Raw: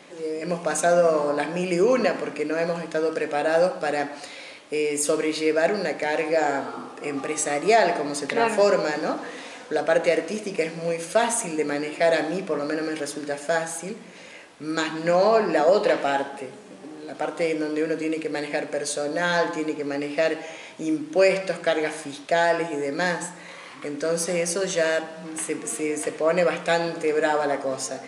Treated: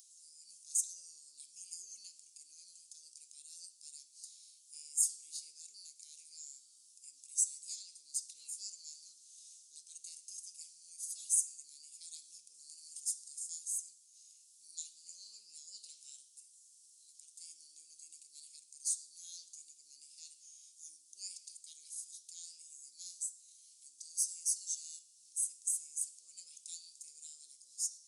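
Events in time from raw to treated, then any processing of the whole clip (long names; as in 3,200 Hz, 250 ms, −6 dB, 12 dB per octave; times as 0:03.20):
0:12.54–0:13.59: parametric band 8,300 Hz +5.5 dB
whole clip: inverse Chebyshev high-pass filter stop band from 1,900 Hz, stop band 60 dB; upward compression, threshold −53 dBFS; level −3 dB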